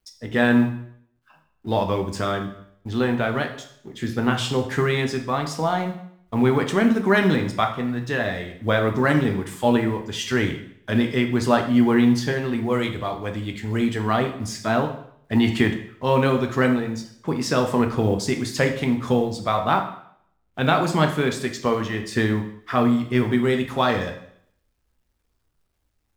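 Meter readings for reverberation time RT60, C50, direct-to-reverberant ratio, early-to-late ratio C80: 0.65 s, 9.0 dB, 4.5 dB, 12.5 dB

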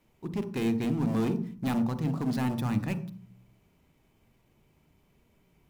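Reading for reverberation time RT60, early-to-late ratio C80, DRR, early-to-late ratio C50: 0.45 s, 16.5 dB, 10.5 dB, 13.0 dB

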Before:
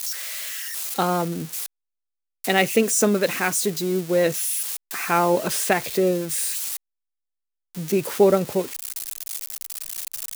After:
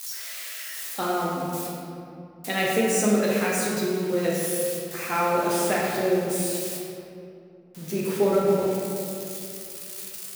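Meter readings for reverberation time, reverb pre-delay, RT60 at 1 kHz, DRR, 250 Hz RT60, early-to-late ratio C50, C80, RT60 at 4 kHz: 2.6 s, 9 ms, 2.4 s, −5.0 dB, 3.2 s, −1.5 dB, 0.0 dB, 1.4 s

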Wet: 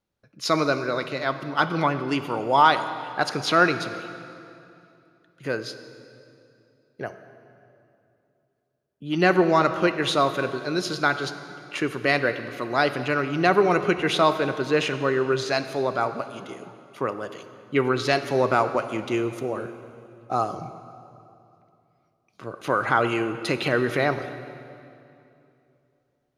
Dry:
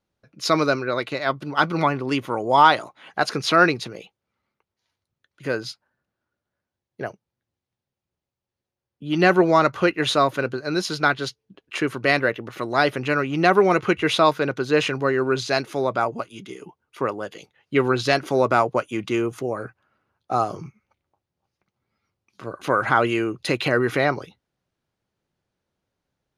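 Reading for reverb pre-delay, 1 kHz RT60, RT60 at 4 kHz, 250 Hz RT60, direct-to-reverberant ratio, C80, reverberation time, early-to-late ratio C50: 26 ms, 2.6 s, 2.2 s, 3.1 s, 10.0 dB, 11.5 dB, 2.8 s, 10.5 dB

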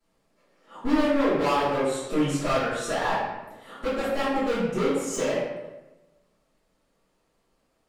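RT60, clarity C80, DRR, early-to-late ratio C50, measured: 1.0 s, 2.5 dB, −16.5 dB, −0.5 dB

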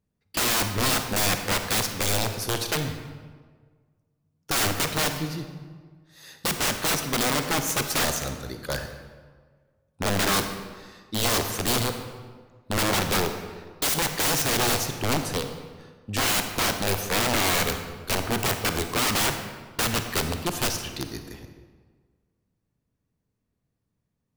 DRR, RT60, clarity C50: 6.5 dB, 1.6 s, 7.5 dB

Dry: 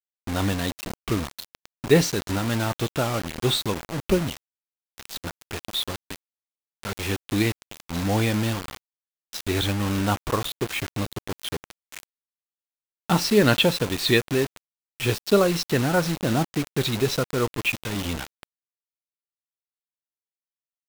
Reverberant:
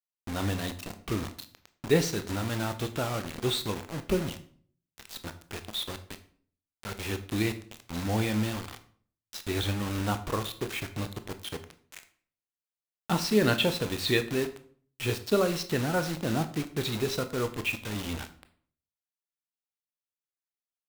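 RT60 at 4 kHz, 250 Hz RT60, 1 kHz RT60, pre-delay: 0.40 s, 0.60 s, 0.45 s, 18 ms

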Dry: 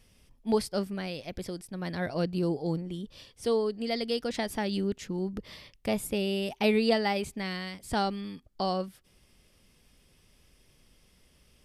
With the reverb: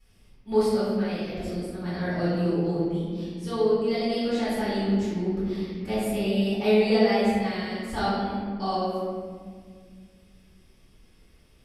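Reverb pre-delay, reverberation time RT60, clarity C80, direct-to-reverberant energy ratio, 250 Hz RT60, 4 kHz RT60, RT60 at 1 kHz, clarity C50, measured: 3 ms, 1.9 s, 0.0 dB, −13.5 dB, 3.0 s, 1.0 s, 1.6 s, −2.5 dB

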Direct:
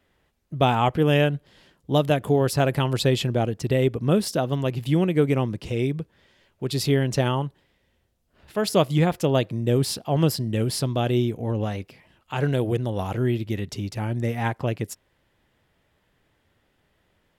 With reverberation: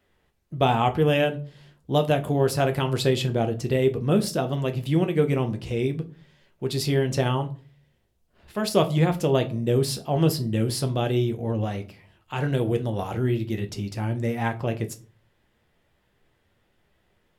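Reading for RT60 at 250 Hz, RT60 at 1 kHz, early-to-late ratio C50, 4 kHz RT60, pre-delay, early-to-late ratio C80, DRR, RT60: 0.50 s, 0.35 s, 17.5 dB, 0.25 s, 5 ms, 22.5 dB, 6.0 dB, 0.40 s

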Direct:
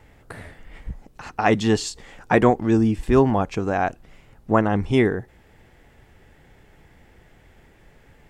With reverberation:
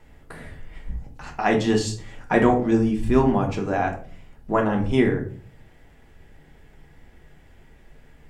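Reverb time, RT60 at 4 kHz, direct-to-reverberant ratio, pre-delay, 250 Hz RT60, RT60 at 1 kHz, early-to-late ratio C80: 0.45 s, 0.30 s, 1.5 dB, 3 ms, 0.70 s, 0.40 s, 14.5 dB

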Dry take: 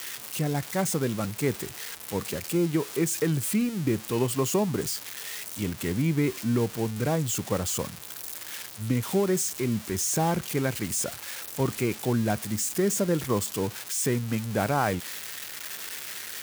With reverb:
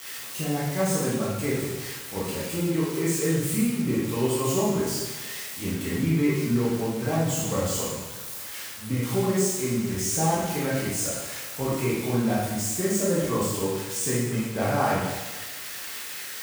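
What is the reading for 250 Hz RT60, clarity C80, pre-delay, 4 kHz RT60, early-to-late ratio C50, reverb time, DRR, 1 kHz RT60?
1.3 s, 2.5 dB, 6 ms, 1.1 s, −0.5 dB, 1.2 s, −7.5 dB, 1.2 s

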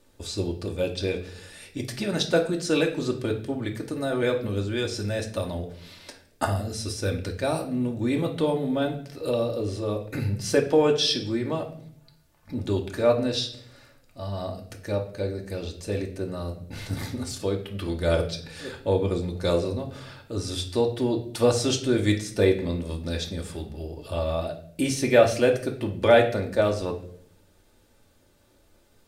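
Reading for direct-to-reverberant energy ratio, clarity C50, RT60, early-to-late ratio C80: 1.0 dB, 10.5 dB, 0.60 s, 14.5 dB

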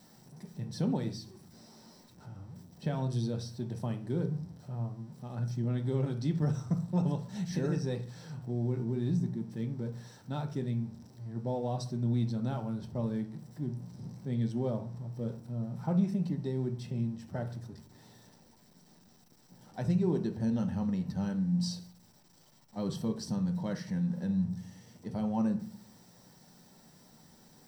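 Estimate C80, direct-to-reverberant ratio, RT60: 17.5 dB, 5.0 dB, 0.45 s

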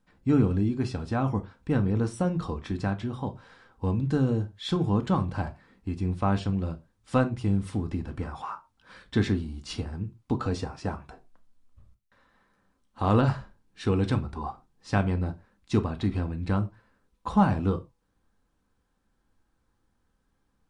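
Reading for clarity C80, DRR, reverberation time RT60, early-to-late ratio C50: 26.0 dB, 6.5 dB, non-exponential decay, 19.0 dB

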